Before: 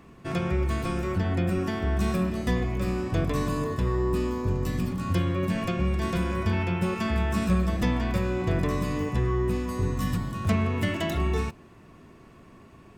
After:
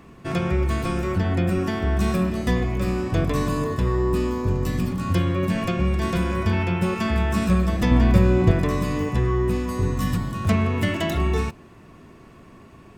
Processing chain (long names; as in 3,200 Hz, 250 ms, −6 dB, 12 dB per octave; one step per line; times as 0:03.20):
0:07.91–0:08.51: low-shelf EQ 440 Hz +8 dB
level +4 dB